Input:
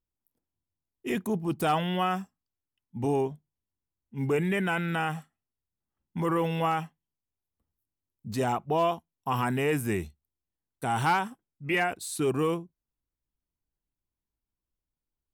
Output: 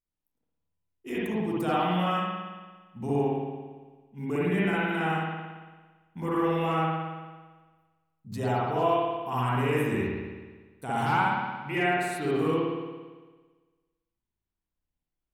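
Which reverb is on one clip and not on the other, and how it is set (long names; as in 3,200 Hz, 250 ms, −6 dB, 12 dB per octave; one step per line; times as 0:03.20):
spring reverb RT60 1.4 s, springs 56 ms, chirp 60 ms, DRR −8 dB
level −7.5 dB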